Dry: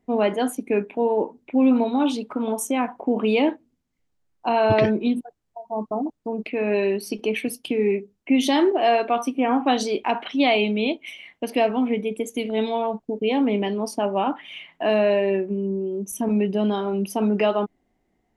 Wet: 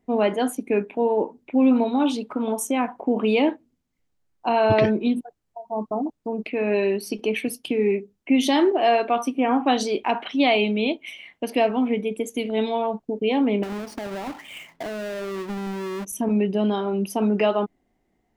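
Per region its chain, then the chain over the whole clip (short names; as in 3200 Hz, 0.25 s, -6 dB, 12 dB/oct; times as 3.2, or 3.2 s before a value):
13.63–16.05 half-waves squared off + compressor 10:1, threshold -28 dBFS + high shelf 3900 Hz -11.5 dB
whole clip: dry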